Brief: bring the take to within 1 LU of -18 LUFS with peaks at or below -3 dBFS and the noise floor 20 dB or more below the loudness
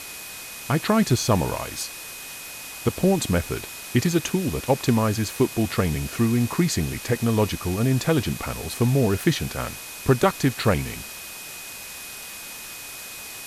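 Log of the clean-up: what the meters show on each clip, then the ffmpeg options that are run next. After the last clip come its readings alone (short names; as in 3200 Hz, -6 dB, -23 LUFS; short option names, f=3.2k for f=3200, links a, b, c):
steady tone 2500 Hz; tone level -42 dBFS; noise floor -38 dBFS; noise floor target -44 dBFS; loudness -23.5 LUFS; peak -6.0 dBFS; loudness target -18.0 LUFS
-> -af "bandreject=f=2.5k:w=30"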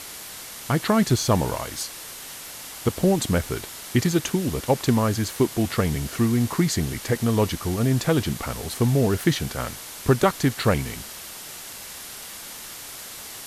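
steady tone none; noise floor -39 dBFS; noise floor target -44 dBFS
-> -af "afftdn=nr=6:nf=-39"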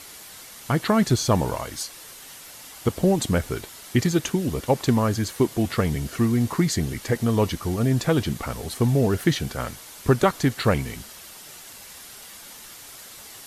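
noise floor -43 dBFS; noise floor target -44 dBFS
-> -af "afftdn=nr=6:nf=-43"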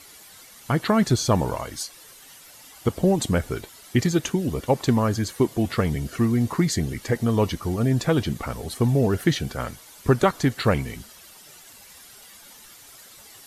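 noise floor -48 dBFS; loudness -23.5 LUFS; peak -6.0 dBFS; loudness target -18.0 LUFS
-> -af "volume=5.5dB,alimiter=limit=-3dB:level=0:latency=1"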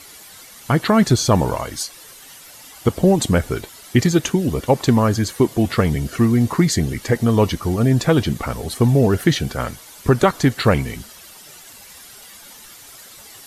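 loudness -18.5 LUFS; peak -3.0 dBFS; noise floor -42 dBFS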